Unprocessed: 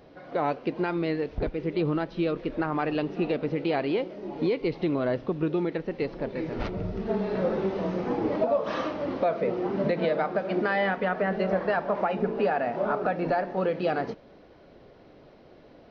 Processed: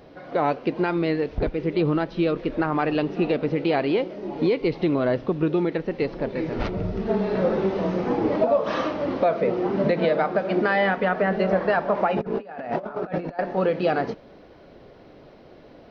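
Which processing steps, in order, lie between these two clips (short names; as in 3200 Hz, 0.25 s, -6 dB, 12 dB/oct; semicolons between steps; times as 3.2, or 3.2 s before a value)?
12.16–13.39 negative-ratio compressor -33 dBFS, ratio -0.5; gain +4.5 dB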